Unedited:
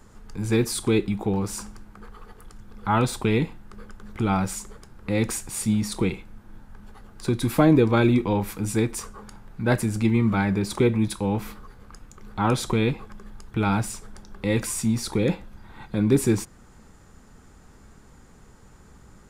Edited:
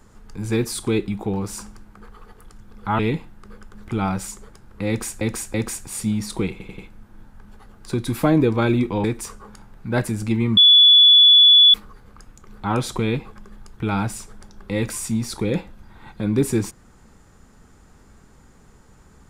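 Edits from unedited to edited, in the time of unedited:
2.99–3.27 s: delete
5.16–5.49 s: loop, 3 plays
6.13 s: stutter 0.09 s, 4 plays
8.39–8.78 s: delete
10.31–11.48 s: bleep 3.43 kHz -7.5 dBFS

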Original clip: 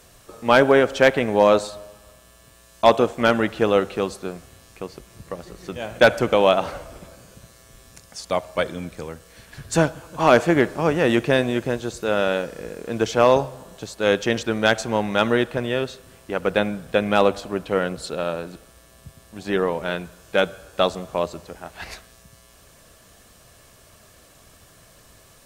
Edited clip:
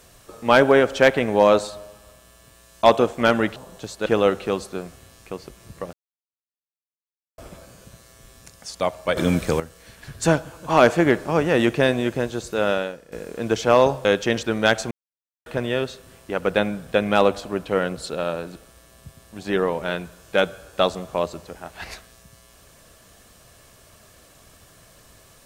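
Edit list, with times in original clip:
5.43–6.88 s: mute
8.67–9.10 s: gain +12 dB
12.21–12.62 s: fade out quadratic, to -13.5 dB
13.55–14.05 s: move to 3.56 s
14.91–15.46 s: mute

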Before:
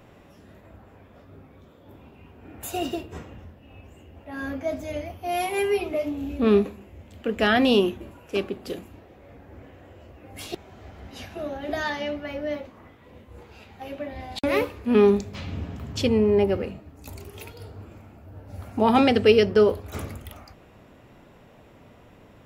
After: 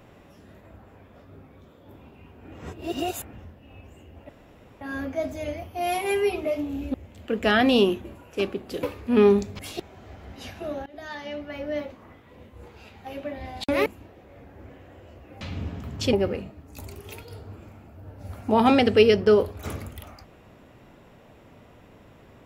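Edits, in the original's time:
2.52–3.33 s: reverse
4.29 s: insert room tone 0.52 s
6.42–6.90 s: delete
8.79–10.34 s: swap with 14.61–15.37 s
11.61–12.51 s: fade in, from -19.5 dB
16.09–16.42 s: delete

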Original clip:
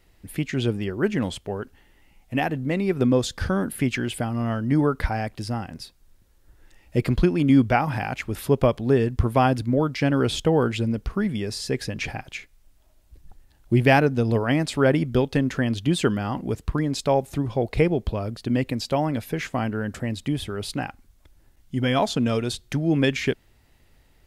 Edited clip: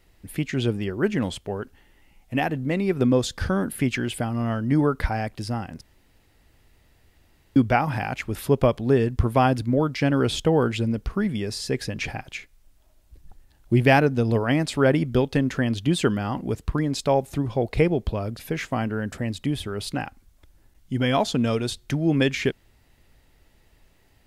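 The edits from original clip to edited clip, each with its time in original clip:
5.81–7.56 s: room tone
18.39–19.21 s: delete

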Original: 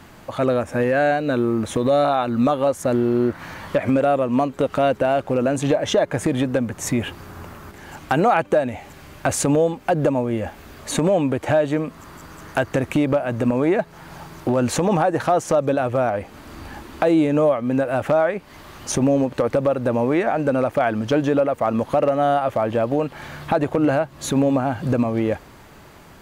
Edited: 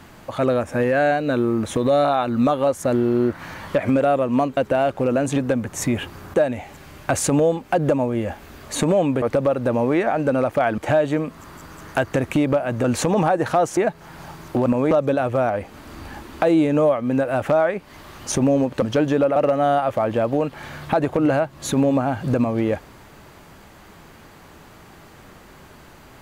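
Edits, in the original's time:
4.57–4.87 s: delete
5.66–6.41 s: delete
7.39–8.50 s: delete
13.44–13.69 s: swap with 14.58–15.51 s
19.42–20.98 s: move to 11.38 s
21.52–21.95 s: delete

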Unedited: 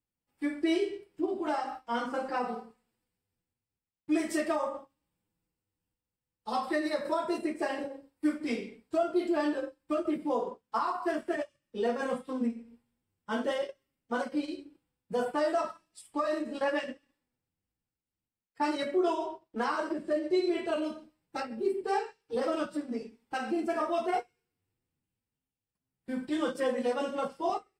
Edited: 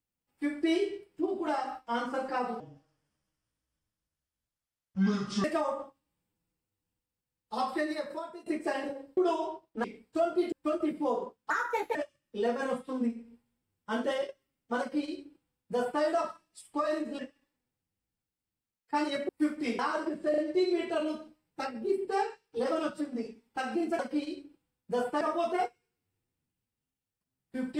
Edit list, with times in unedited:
2.60–4.39 s: speed 63%
6.65–7.41 s: fade out, to -24 dB
8.12–8.62 s: swap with 18.96–19.63 s
9.30–9.77 s: delete
10.75–11.35 s: speed 134%
14.20–15.42 s: copy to 23.75 s
16.59–16.86 s: delete
20.14 s: stutter 0.04 s, 3 plays

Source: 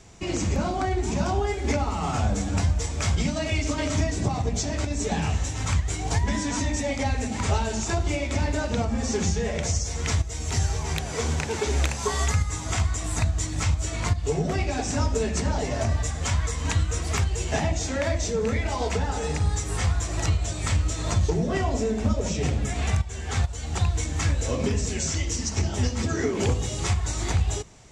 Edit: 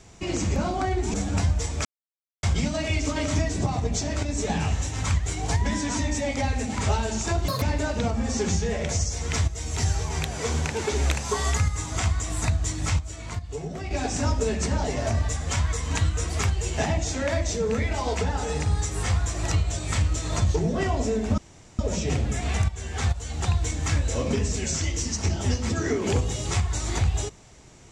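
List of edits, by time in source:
1.14–2.34 s: delete
3.05 s: insert silence 0.58 s
8.10–8.36 s: speed 188%
13.73–14.65 s: gain -8 dB
22.12 s: insert room tone 0.41 s

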